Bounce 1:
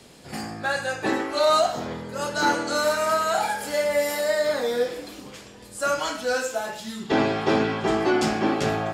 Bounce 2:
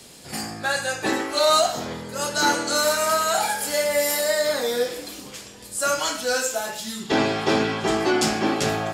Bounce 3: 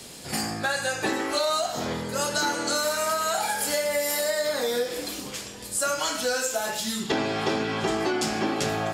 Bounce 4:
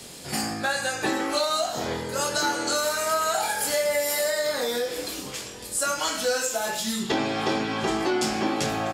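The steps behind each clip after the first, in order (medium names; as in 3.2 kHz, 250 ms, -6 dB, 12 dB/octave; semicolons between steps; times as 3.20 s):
treble shelf 3.9 kHz +11 dB
compression, threshold -26 dBFS, peak gain reduction 11 dB; trim +3 dB
doubling 22 ms -8 dB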